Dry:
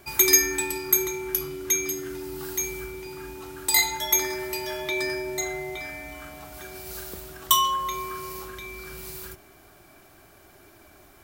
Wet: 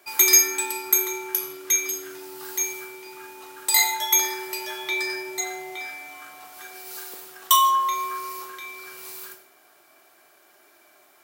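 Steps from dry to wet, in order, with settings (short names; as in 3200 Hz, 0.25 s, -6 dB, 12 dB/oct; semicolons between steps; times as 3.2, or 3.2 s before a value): Bessel high-pass 560 Hz, order 2; in parallel at -6 dB: crossover distortion -45.5 dBFS; on the sum: non-linear reverb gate 0.19 s falling, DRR 5 dB; gain -2.5 dB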